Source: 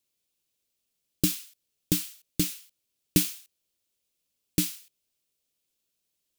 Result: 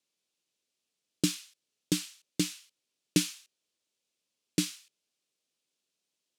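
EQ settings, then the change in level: BPF 180–7700 Hz; 0.0 dB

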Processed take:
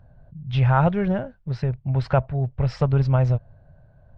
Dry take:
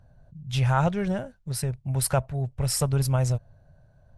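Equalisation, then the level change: Gaussian blur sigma 2.6 samples; +4.5 dB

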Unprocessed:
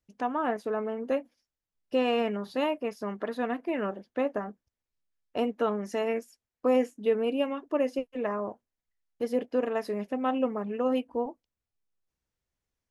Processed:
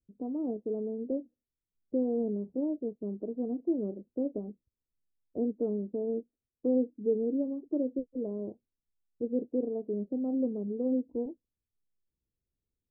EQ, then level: inverse Chebyshev low-pass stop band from 2000 Hz, stop band 70 dB; dynamic EQ 330 Hz, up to +4 dB, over -47 dBFS, Q 4.8; 0.0 dB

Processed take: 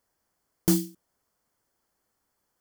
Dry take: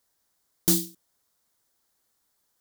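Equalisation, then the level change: high shelf 2400 Hz -10 dB; notch 3800 Hz, Q 6; +3.5 dB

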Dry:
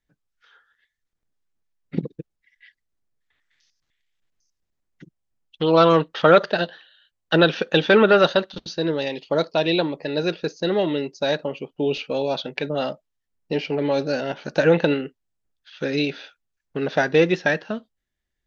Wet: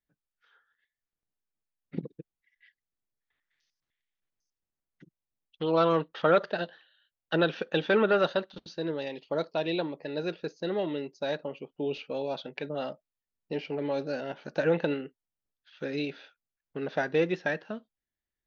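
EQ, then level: low shelf 95 Hz -6 dB; high shelf 4300 Hz -8.5 dB; -8.5 dB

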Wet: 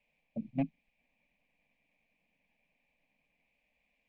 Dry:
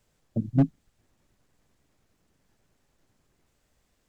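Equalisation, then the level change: synth low-pass 2400 Hz, resonance Q 11; low shelf 190 Hz -7.5 dB; fixed phaser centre 370 Hz, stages 6; -5.5 dB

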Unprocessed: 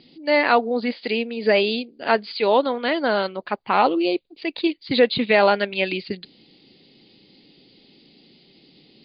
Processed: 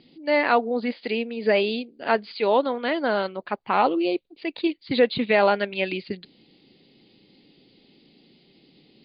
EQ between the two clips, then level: air absorption 130 m; -2.0 dB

